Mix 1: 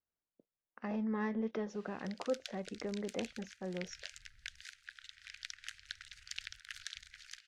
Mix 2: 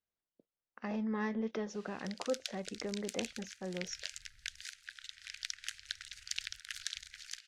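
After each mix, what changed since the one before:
master: add high-shelf EQ 3,500 Hz +9.5 dB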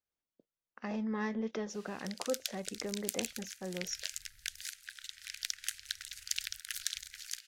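master: remove high-frequency loss of the air 72 metres

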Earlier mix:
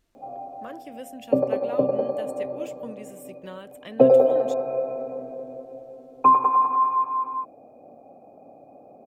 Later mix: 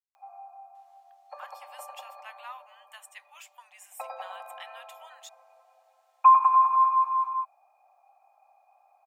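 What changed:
speech: entry +0.75 s
master: add Butterworth high-pass 860 Hz 48 dB per octave

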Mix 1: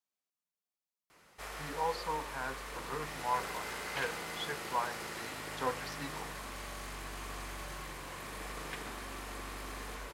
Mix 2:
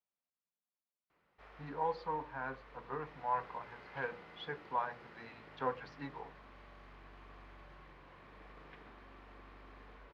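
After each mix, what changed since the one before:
background −11.0 dB
master: add high-frequency loss of the air 330 metres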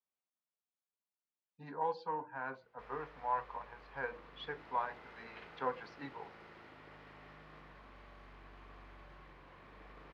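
speech: add high-pass filter 200 Hz 6 dB per octave
background: entry +1.40 s

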